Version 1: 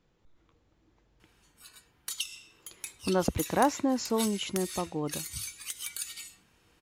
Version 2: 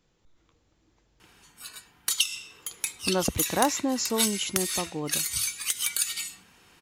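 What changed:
speech: remove low-pass filter 2,600 Hz 6 dB per octave
background +10.0 dB

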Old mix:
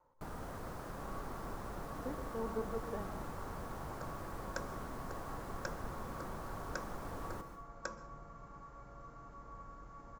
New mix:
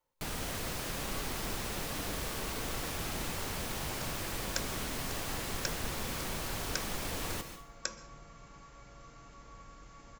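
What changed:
speech −11.5 dB
first sound +6.0 dB
master: add high shelf with overshoot 1,800 Hz +12.5 dB, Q 1.5

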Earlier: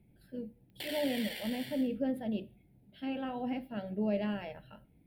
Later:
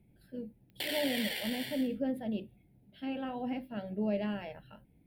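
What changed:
speech: send off
background +5.0 dB

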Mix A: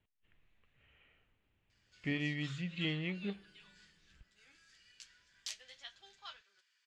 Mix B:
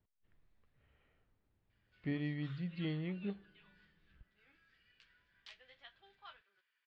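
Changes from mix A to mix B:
speech: add high shelf with overshoot 3,800 Hz +11.5 dB, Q 3
master: add high-frequency loss of the air 420 metres

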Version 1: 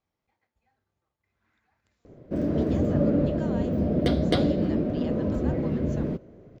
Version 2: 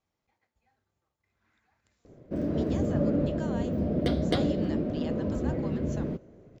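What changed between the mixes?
speech: remove high-frequency loss of the air 61 metres
background −3.5 dB

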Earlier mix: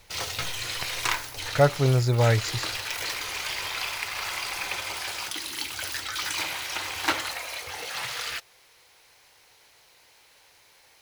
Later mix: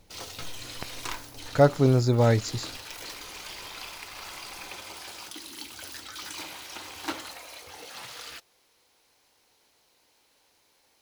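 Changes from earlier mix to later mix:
background −7.5 dB
master: add octave-band graphic EQ 125/250/2,000 Hz −3/+9/−5 dB

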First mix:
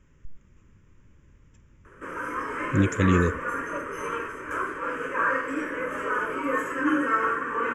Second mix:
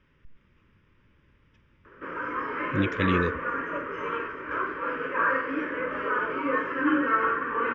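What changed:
speech: add spectral tilt +2 dB per octave
master: add Butterworth low-pass 4,700 Hz 48 dB per octave

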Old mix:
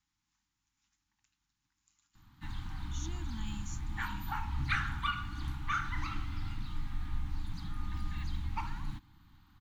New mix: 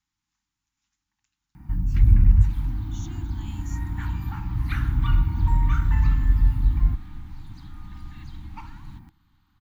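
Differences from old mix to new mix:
first sound: unmuted
second sound −3.5 dB

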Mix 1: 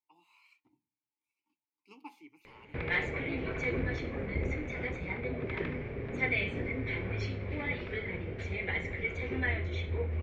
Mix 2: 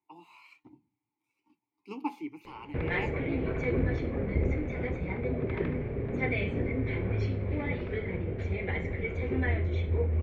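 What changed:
speech +11.5 dB
master: add tilt shelving filter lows +6 dB, about 1,200 Hz

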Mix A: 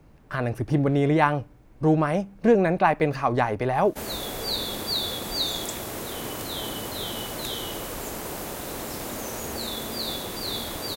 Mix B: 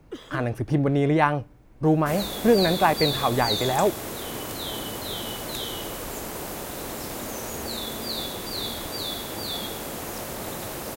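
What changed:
first sound: unmuted
second sound: entry −1.90 s

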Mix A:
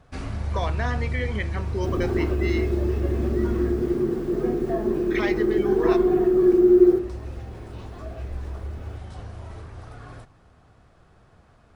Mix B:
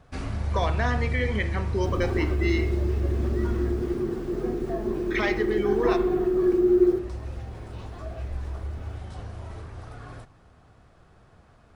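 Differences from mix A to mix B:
speech: send +10.5 dB
second sound −4.5 dB

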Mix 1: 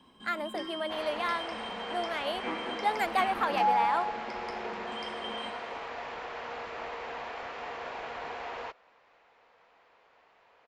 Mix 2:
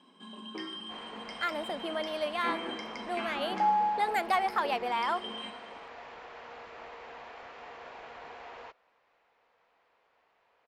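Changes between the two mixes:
speech: entry +1.15 s
second sound −7.5 dB

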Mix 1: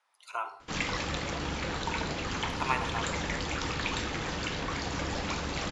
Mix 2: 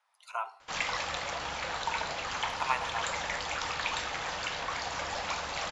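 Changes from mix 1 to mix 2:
speech: send −10.0 dB
master: add low shelf with overshoot 470 Hz −11.5 dB, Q 1.5

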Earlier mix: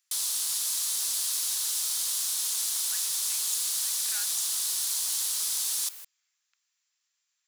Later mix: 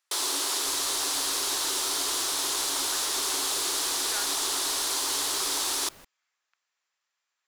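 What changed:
speech −8.5 dB
second sound −9.0 dB
master: remove first difference

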